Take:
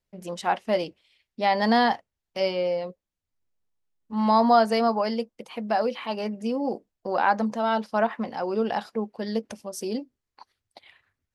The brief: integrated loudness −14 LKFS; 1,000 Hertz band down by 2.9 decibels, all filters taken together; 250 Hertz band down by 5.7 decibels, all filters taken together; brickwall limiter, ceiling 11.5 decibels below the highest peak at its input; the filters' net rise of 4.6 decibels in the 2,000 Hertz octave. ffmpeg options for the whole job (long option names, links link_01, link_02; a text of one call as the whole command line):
ffmpeg -i in.wav -af "equalizer=frequency=250:width_type=o:gain=-6.5,equalizer=frequency=1000:width_type=o:gain=-5,equalizer=frequency=2000:width_type=o:gain=7.5,volume=18dB,alimiter=limit=-2dB:level=0:latency=1" out.wav